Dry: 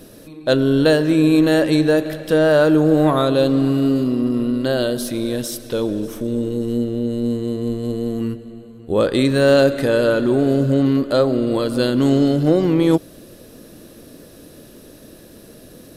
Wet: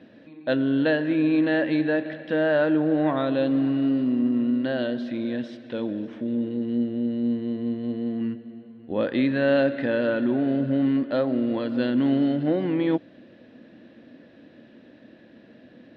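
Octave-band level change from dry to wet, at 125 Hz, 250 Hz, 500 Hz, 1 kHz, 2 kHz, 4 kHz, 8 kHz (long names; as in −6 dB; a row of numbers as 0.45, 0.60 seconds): −11.5 dB, −5.0 dB, −8.5 dB, −8.0 dB, −4.5 dB, −11.5 dB, below −35 dB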